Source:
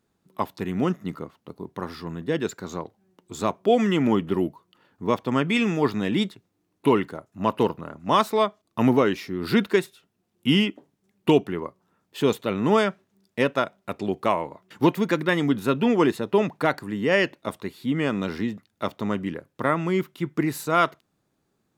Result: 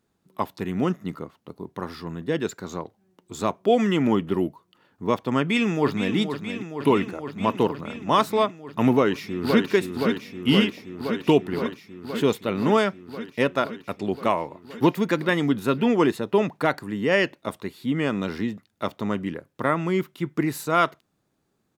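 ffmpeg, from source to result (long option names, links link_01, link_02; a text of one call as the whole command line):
ffmpeg -i in.wav -filter_complex "[0:a]asplit=2[link_01][link_02];[link_02]afade=type=in:start_time=5.39:duration=0.01,afade=type=out:start_time=6.15:duration=0.01,aecho=0:1:470|940|1410|1880|2350|2820|3290|3760|4230|4700|5170|5640:0.354813|0.283851|0.227081|0.181664|0.145332|0.116265|0.0930122|0.0744098|0.0595278|0.0476222|0.0380978|0.0304782[link_03];[link_01][link_03]amix=inputs=2:normalize=0,asplit=2[link_04][link_05];[link_05]afade=type=in:start_time=8.92:duration=0.01,afade=type=out:start_time=9.68:duration=0.01,aecho=0:1:520|1040|1560|2080|2600|3120|3640|4160|4680|5200|5720|6240:0.595662|0.47653|0.381224|0.304979|0.243983|0.195187|0.156149|0.124919|0.0999355|0.0799484|0.0639587|0.051167[link_06];[link_04][link_06]amix=inputs=2:normalize=0" out.wav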